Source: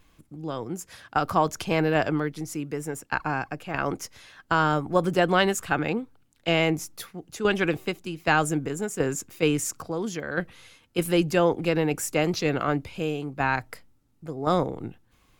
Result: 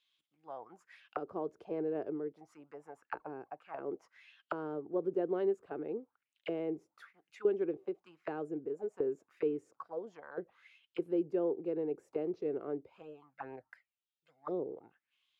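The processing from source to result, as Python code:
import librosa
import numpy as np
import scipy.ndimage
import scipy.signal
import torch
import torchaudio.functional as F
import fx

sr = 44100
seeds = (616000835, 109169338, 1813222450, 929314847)

y = fx.env_flanger(x, sr, rest_ms=2.3, full_db=-18.5, at=(13.01, 14.68), fade=0.02)
y = fx.auto_wah(y, sr, base_hz=400.0, top_hz=3700.0, q=4.8, full_db=-24.0, direction='down')
y = y * 10.0 ** (-3.5 / 20.0)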